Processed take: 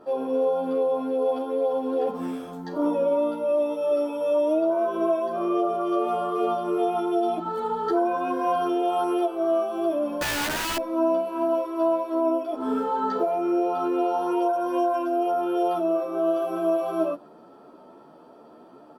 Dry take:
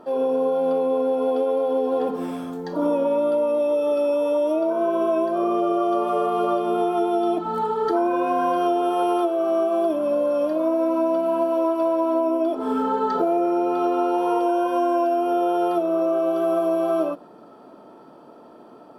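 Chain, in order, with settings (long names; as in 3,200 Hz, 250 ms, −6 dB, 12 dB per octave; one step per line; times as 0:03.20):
0:10.21–0:10.77: wrap-around overflow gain 19.5 dB
barber-pole flanger 11.4 ms +2.5 Hz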